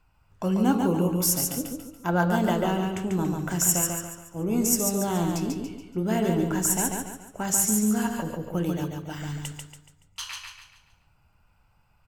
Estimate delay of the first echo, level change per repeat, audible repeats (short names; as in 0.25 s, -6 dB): 0.142 s, -8.0 dB, 4